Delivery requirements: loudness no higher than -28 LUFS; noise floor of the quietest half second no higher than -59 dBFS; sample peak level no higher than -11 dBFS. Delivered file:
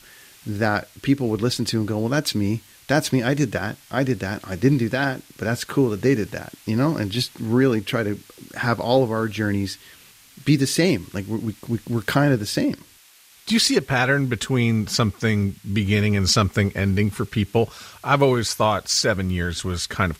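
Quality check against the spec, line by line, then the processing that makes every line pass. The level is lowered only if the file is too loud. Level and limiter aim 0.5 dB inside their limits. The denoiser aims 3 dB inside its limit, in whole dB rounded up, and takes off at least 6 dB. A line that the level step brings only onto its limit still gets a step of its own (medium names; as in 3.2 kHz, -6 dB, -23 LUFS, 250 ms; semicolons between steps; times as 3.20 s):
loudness -22.0 LUFS: fail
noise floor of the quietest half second -52 dBFS: fail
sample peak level -6.0 dBFS: fail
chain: noise reduction 6 dB, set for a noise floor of -52 dBFS; trim -6.5 dB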